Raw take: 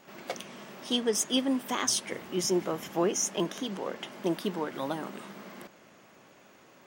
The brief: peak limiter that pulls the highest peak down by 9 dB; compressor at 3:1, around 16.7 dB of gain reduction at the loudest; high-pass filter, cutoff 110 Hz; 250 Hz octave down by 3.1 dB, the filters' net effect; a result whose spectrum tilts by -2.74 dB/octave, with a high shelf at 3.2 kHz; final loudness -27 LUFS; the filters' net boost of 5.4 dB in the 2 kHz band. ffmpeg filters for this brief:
-af "highpass=110,equalizer=f=250:t=o:g=-4,equalizer=f=2000:t=o:g=8.5,highshelf=f=3200:g=-6,acompressor=threshold=0.00447:ratio=3,volume=11.9,alimiter=limit=0.158:level=0:latency=1"

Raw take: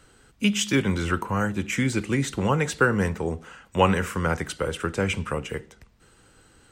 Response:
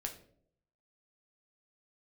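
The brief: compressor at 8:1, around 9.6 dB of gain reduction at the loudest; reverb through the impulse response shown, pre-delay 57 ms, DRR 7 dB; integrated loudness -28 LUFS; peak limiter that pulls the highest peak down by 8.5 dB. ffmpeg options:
-filter_complex "[0:a]acompressor=threshold=0.0631:ratio=8,alimiter=limit=0.0891:level=0:latency=1,asplit=2[s0][s1];[1:a]atrim=start_sample=2205,adelay=57[s2];[s1][s2]afir=irnorm=-1:irlink=0,volume=0.501[s3];[s0][s3]amix=inputs=2:normalize=0,volume=1.41"

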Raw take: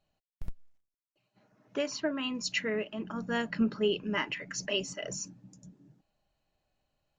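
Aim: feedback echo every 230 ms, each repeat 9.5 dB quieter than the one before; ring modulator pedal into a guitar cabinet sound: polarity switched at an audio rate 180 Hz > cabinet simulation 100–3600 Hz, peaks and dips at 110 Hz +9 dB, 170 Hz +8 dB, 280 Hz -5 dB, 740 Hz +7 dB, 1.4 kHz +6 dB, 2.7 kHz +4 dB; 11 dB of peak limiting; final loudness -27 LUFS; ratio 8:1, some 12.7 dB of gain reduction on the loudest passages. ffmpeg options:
-af "acompressor=threshold=0.0158:ratio=8,alimiter=level_in=3.98:limit=0.0631:level=0:latency=1,volume=0.251,aecho=1:1:230|460|690|920:0.335|0.111|0.0365|0.012,aeval=exprs='val(0)*sgn(sin(2*PI*180*n/s))':c=same,highpass=100,equalizer=f=110:t=q:w=4:g=9,equalizer=f=170:t=q:w=4:g=8,equalizer=f=280:t=q:w=4:g=-5,equalizer=f=740:t=q:w=4:g=7,equalizer=f=1400:t=q:w=4:g=6,equalizer=f=2700:t=q:w=4:g=4,lowpass=f=3600:w=0.5412,lowpass=f=3600:w=1.3066,volume=7.08"

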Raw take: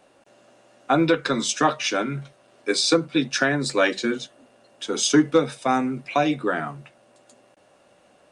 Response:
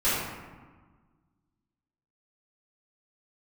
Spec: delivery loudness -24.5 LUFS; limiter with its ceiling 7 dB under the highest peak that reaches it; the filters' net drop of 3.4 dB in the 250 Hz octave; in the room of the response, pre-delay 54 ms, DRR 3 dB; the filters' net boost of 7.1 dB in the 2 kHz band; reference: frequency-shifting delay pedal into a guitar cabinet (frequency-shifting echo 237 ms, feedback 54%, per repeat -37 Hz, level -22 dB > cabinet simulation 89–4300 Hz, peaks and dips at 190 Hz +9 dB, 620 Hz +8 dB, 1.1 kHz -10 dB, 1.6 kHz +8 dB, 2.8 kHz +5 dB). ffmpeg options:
-filter_complex "[0:a]equalizer=f=250:t=o:g=-6,equalizer=f=2000:t=o:g=3,alimiter=limit=0.211:level=0:latency=1,asplit=2[s0][s1];[1:a]atrim=start_sample=2205,adelay=54[s2];[s1][s2]afir=irnorm=-1:irlink=0,volume=0.141[s3];[s0][s3]amix=inputs=2:normalize=0,asplit=5[s4][s5][s6][s7][s8];[s5]adelay=237,afreqshift=-37,volume=0.0794[s9];[s6]adelay=474,afreqshift=-74,volume=0.0427[s10];[s7]adelay=711,afreqshift=-111,volume=0.0232[s11];[s8]adelay=948,afreqshift=-148,volume=0.0124[s12];[s4][s9][s10][s11][s12]amix=inputs=5:normalize=0,highpass=89,equalizer=f=190:t=q:w=4:g=9,equalizer=f=620:t=q:w=4:g=8,equalizer=f=1100:t=q:w=4:g=-10,equalizer=f=1600:t=q:w=4:g=8,equalizer=f=2800:t=q:w=4:g=5,lowpass=f=4300:w=0.5412,lowpass=f=4300:w=1.3066,volume=0.794"

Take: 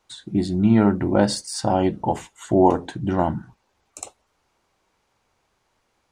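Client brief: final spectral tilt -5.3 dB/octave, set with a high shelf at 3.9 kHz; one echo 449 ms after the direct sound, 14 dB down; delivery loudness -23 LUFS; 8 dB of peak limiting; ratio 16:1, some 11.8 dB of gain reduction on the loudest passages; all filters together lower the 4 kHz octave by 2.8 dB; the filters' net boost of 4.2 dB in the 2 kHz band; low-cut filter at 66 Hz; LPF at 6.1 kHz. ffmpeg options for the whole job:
-af "highpass=66,lowpass=6100,equalizer=f=2000:t=o:g=6,highshelf=f=3900:g=6.5,equalizer=f=4000:t=o:g=-8,acompressor=threshold=0.0794:ratio=16,alimiter=limit=0.106:level=0:latency=1,aecho=1:1:449:0.2,volume=2.66"

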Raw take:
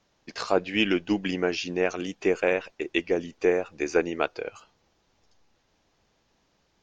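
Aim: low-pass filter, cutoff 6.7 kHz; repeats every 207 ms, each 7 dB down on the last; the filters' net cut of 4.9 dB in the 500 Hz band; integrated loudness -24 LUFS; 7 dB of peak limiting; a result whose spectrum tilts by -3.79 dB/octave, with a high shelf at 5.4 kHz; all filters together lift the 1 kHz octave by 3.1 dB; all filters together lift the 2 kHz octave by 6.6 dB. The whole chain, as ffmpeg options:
-af "lowpass=6700,equalizer=f=500:t=o:g=-7.5,equalizer=f=1000:t=o:g=5,equalizer=f=2000:t=o:g=7,highshelf=f=5400:g=4,alimiter=limit=0.282:level=0:latency=1,aecho=1:1:207|414|621|828|1035:0.447|0.201|0.0905|0.0407|0.0183,volume=1.41"

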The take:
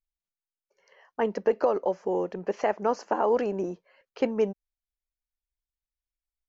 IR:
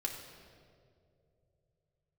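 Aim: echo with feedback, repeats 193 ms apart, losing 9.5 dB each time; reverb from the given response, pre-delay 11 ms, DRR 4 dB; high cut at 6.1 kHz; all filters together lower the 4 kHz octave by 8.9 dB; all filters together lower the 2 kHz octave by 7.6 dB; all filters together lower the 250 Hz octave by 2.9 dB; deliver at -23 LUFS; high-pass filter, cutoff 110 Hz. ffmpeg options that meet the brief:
-filter_complex "[0:a]highpass=110,lowpass=6100,equalizer=f=250:t=o:g=-3.5,equalizer=f=2000:t=o:g=-8,equalizer=f=4000:t=o:g=-9,aecho=1:1:193|386|579|772:0.335|0.111|0.0365|0.012,asplit=2[s0][s1];[1:a]atrim=start_sample=2205,adelay=11[s2];[s1][s2]afir=irnorm=-1:irlink=0,volume=0.531[s3];[s0][s3]amix=inputs=2:normalize=0,volume=1.68"

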